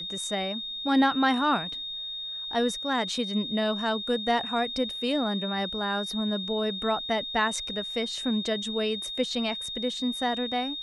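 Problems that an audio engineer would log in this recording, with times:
whistle 3,700 Hz −33 dBFS

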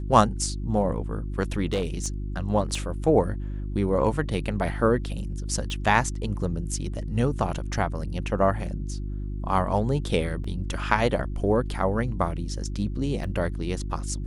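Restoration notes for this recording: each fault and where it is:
mains hum 50 Hz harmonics 7 −31 dBFS
0:01.73–0:02.08: clipping −20.5 dBFS
0:02.75: drop-out 2.9 ms
0:05.70: click
0:10.44: drop-out 3.9 ms
0:13.24: drop-out 2.8 ms

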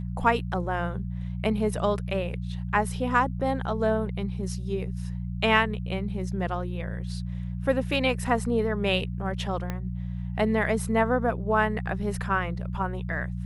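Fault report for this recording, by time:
mains hum 60 Hz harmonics 3 −32 dBFS
0:09.70: click −17 dBFS

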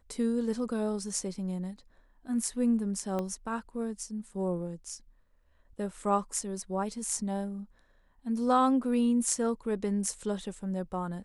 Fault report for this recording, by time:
0:03.19: click −21 dBFS

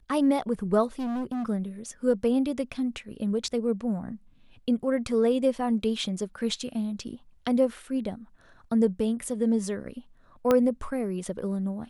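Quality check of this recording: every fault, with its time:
0:00.99–0:01.46: clipping −28 dBFS
0:10.51: click −10 dBFS

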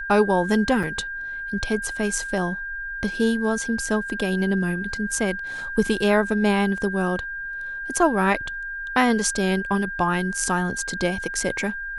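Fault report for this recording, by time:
whistle 1,600 Hz −29 dBFS
0:00.83–0:00.84: drop-out 5.3 ms

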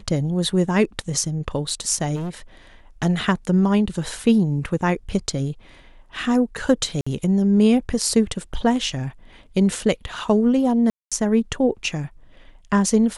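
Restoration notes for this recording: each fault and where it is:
0:02.15–0:02.30: clipping −25 dBFS
0:07.01–0:07.07: drop-out 55 ms
0:10.90–0:11.12: drop-out 216 ms

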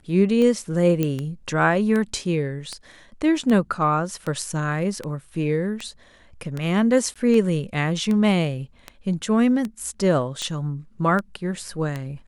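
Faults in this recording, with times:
scratch tick 78 rpm −15 dBFS
0:01.03: click −10 dBFS
0:07.14–0:07.16: drop-out 16 ms

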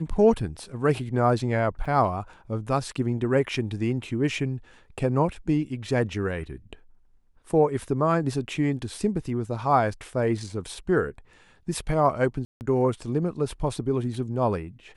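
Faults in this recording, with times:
0:01.85: drop-out 4.9 ms
0:12.45–0:12.61: drop-out 159 ms

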